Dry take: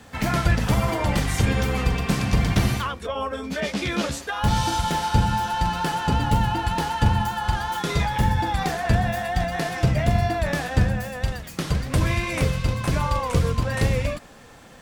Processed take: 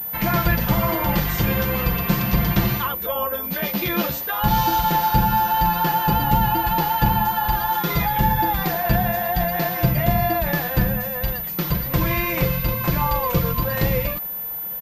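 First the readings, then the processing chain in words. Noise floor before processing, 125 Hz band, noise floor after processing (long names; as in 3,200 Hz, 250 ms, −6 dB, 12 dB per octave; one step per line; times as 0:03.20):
−45 dBFS, −0.5 dB, −29 dBFS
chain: parametric band 940 Hz +4.5 dB 0.21 octaves
comb filter 5.8 ms, depth 55%
switching amplifier with a slow clock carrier 14,000 Hz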